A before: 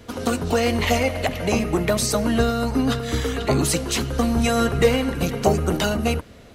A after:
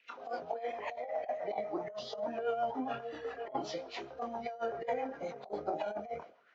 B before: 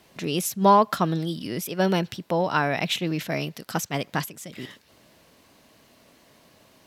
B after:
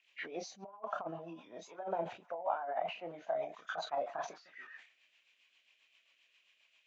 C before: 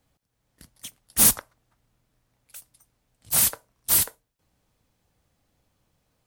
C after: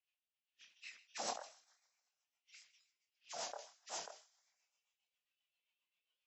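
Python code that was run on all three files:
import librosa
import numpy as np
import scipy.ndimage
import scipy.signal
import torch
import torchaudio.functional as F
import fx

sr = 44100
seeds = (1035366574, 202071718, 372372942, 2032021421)

p1 = fx.freq_compress(x, sr, knee_hz=1700.0, ratio=1.5)
p2 = fx.auto_wah(p1, sr, base_hz=720.0, top_hz=2800.0, q=4.1, full_db=-26.5, direction='down')
p3 = fx.highpass(p2, sr, hz=440.0, slope=6)
p4 = p3 + fx.echo_wet_highpass(p3, sr, ms=155, feedback_pct=56, hz=1500.0, wet_db=-22, dry=0)
p5 = fx.chorus_voices(p4, sr, voices=6, hz=0.7, base_ms=27, depth_ms=3.5, mix_pct=35)
p6 = fx.noise_reduce_blind(p5, sr, reduce_db=8)
p7 = fx.over_compress(p6, sr, threshold_db=-38.0, ratio=-0.5)
p8 = fx.rotary(p7, sr, hz=7.5)
p9 = fx.high_shelf(p8, sr, hz=4900.0, db=5.5)
p10 = fx.sustainer(p9, sr, db_per_s=130.0)
y = p10 * 10.0 ** (4.5 / 20.0)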